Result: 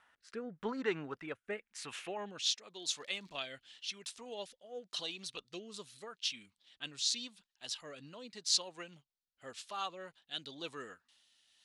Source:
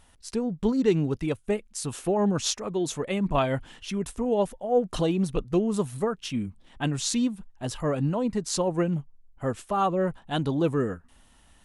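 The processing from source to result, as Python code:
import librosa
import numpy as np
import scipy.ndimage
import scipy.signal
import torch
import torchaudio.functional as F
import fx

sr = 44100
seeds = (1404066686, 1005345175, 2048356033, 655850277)

y = fx.dmg_crackle(x, sr, seeds[0], per_s=130.0, level_db=-46.0, at=(2.74, 3.41), fade=0.02)
y = fx.filter_sweep_bandpass(y, sr, from_hz=1500.0, to_hz=4200.0, start_s=1.45, end_s=2.66, q=2.1)
y = fx.rotary(y, sr, hz=0.9)
y = y * 10.0 ** (5.5 / 20.0)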